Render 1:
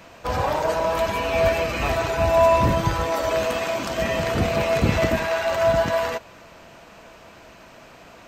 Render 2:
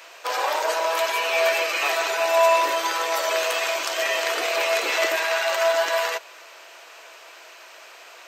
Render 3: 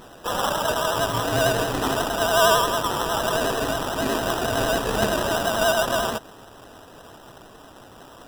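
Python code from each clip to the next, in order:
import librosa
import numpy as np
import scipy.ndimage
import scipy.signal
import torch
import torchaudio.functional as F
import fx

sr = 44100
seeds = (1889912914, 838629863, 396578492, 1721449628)

y1 = scipy.signal.sosfilt(scipy.signal.butter(8, 340.0, 'highpass', fs=sr, output='sos'), x)
y1 = fx.tilt_shelf(y1, sr, db=-7.0, hz=920.0)
y2 = fx.sample_hold(y1, sr, seeds[0], rate_hz=2200.0, jitter_pct=0)
y2 = fx.vibrato(y2, sr, rate_hz=11.0, depth_cents=65.0)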